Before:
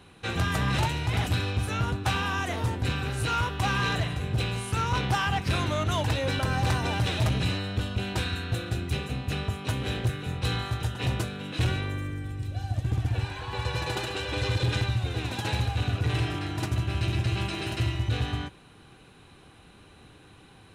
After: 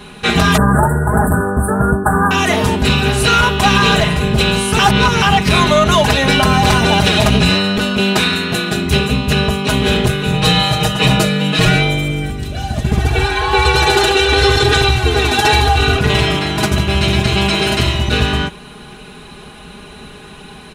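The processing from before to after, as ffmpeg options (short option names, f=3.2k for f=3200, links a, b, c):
-filter_complex "[0:a]asettb=1/sr,asplit=3[a][b][c];[a]atrim=end=0.574[d];[b]atrim=start=0.57:end=2.31,asetpts=PTS-STARTPTS,afade=t=in:d=0.004:c=qsin,afade=t=out:st=1.736:d=0.004:c=qsin,asuperstop=centerf=3800:order=20:qfactor=0.6[e];[c]atrim=start=2.306[f];[d][e]acrossfade=d=0.004:c1=hsin:c2=qsin[g];[g][f]acrossfade=d=0.004:c1=qsin:c2=hsin,asettb=1/sr,asplit=3[h][i][j];[h]atrim=end=7.774[k];[i]atrim=start=7.77:end=8.86,asetpts=PTS-STARTPTS,afade=t=in:d=0.004:c=qsin,afade=t=out:st=1.086:d=0.004:c=qsin,highpass=150[l];[j]atrim=start=8.856[m];[k][l]acrossfade=d=0.004:c1=hsin:c2=qsin[n];[n][m]acrossfade=d=0.004:c1=qsin:c2=hsin,asettb=1/sr,asplit=3[o][p][q];[o]atrim=end=10.334[r];[p]atrim=start=10.33:end=12.3,asetpts=PTS-STARTPTS,afade=t=in:d=0.004:c=qsin,afade=t=out:st=1.966:d=0.004:c=qsin,aecho=1:1:6.4:0.85,atrim=end_sample=86877[s];[q]atrim=start=12.296[t];[r][s]acrossfade=d=0.004:c1=hsin:c2=qsin[u];[u][t]acrossfade=d=0.004:c1=qsin:c2=hsin,asettb=1/sr,asplit=3[v][w][x];[v]atrim=end=12.984[y];[w]atrim=start=12.98:end=15.99,asetpts=PTS-STARTPTS,afade=t=in:d=0.004:c=qsin,afade=t=out:st=3.006:d=0.004:c=qsin,aecho=1:1:2.6:0.82,atrim=end_sample=132741[z];[x]atrim=start=15.986[aa];[y][z]acrossfade=d=0.004:c1=hsin:c2=qsin[ab];[ab][aa]acrossfade=d=0.004:c1=qsin:c2=hsin,asplit=3[ac][ad][ae];[ac]atrim=end=4.792[af];[ad]atrim=start=4.788:end=5.222,asetpts=PTS-STARTPTS,areverse[ag];[ae]atrim=start=5.218[ah];[af][ag]acrossfade=d=0.004:c1=hsin:c2=hsin[ai];[ai][ah]acrossfade=d=0.004:c1=hsin:c2=hsin,aecho=1:1:4.8:0.92,alimiter=level_in=16.5dB:limit=-1dB:release=50:level=0:latency=1,volume=-1dB"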